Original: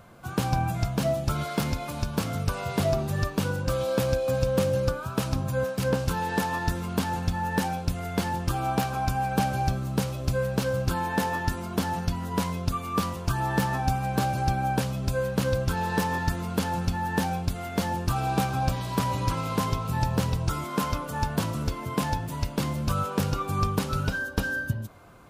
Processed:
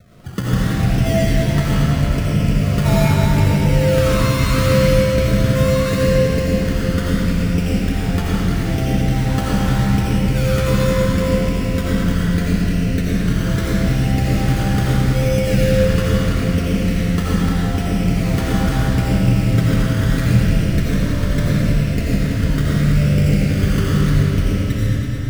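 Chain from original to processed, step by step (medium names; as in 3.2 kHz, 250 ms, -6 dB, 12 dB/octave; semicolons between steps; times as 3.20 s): steep low-pass 730 Hz 96 dB/octave; bass shelf 290 Hz +9.5 dB; decimation with a swept rate 22×, swing 60% 0.77 Hz; multi-head delay 109 ms, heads all three, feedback 68%, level -13.5 dB; algorithmic reverb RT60 2.9 s, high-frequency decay 0.75×, pre-delay 45 ms, DRR -7 dB; trim -2.5 dB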